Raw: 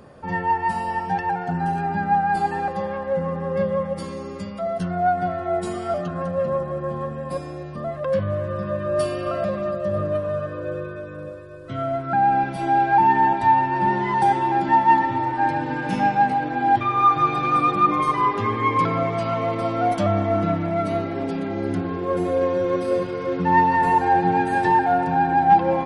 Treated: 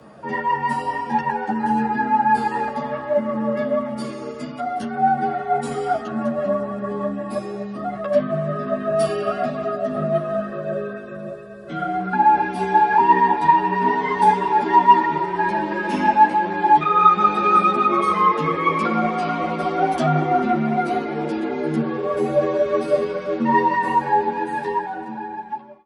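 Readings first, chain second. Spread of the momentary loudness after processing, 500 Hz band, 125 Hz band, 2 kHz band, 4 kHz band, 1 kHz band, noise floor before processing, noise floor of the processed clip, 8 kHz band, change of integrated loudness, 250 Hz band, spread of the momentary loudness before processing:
13 LU, +1.5 dB, -3.0 dB, +1.5 dB, +2.5 dB, +1.5 dB, -33 dBFS, -33 dBFS, n/a, +1.5 dB, +1.5 dB, 12 LU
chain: ending faded out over 2.90 s; frequency shift +53 Hz; ensemble effect; gain +5 dB

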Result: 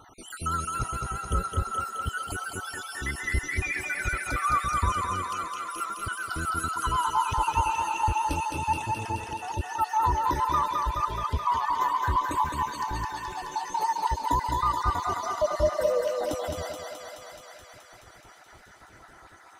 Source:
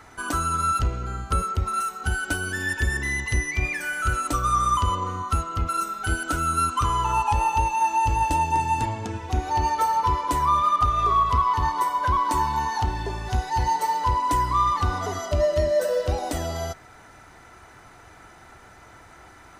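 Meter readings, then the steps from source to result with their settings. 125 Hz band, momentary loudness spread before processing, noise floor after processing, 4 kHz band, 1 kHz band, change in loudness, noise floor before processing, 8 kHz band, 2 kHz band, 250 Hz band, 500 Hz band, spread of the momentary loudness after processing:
-6.5 dB, 7 LU, -52 dBFS, -3.5 dB, -4.5 dB, -4.5 dB, -49 dBFS, -4.0 dB, -4.0 dB, -5.5 dB, -3.0 dB, 8 LU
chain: random spectral dropouts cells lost 63%; vibrato 7.8 Hz 56 cents; thinning echo 0.213 s, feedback 78%, high-pass 380 Hz, level -3 dB; gain -2.5 dB

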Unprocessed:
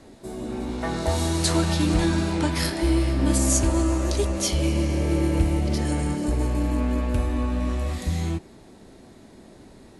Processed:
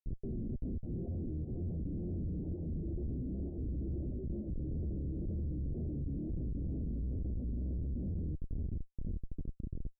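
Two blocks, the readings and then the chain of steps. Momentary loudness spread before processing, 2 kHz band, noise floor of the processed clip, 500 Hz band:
7 LU, under -40 dB, -53 dBFS, -19.5 dB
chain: random spectral dropouts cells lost 23%; reverb removal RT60 0.74 s; HPF 56 Hz 24 dB/oct; low shelf 150 Hz -8 dB; compressor 8:1, threshold -41 dBFS, peak gain reduction 20.5 dB; short-mantissa float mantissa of 4-bit; diffused feedback echo 0.594 s, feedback 59%, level -8 dB; Schmitt trigger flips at -42 dBFS; Gaussian blur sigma 24 samples; wow and flutter 120 cents; gain +9.5 dB

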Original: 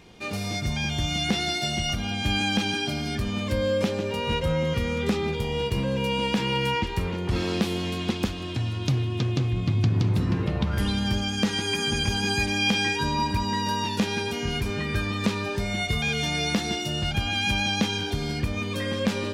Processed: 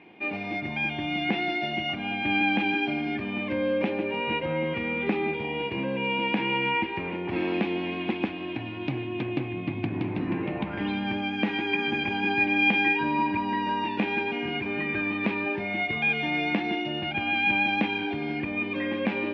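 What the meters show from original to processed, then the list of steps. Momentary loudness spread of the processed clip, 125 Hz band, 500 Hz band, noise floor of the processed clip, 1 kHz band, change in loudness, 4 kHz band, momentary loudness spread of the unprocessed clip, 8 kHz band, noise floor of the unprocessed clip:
8 LU, -10.5 dB, -1.5 dB, -34 dBFS, +1.0 dB, -1.0 dB, -6.5 dB, 5 LU, under -30 dB, -31 dBFS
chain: speaker cabinet 240–2600 Hz, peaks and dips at 310 Hz +8 dB, 470 Hz -5 dB, 800 Hz +4 dB, 1300 Hz -7 dB, 2400 Hz +7 dB

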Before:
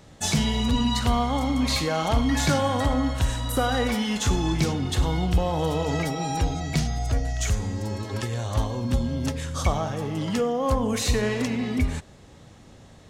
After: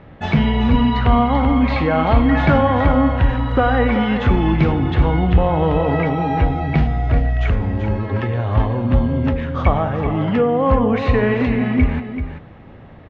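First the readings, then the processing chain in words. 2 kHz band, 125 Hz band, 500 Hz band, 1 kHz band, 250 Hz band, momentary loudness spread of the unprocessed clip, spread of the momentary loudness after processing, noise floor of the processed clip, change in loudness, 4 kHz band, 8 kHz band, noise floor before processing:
+7.5 dB, +8.5 dB, +8.5 dB, +8.5 dB, +8.5 dB, 5 LU, 5 LU, -40 dBFS, +8.0 dB, -3.0 dB, under -25 dB, -49 dBFS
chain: LPF 2500 Hz 24 dB/oct; echo 0.385 s -9 dB; gain +8 dB

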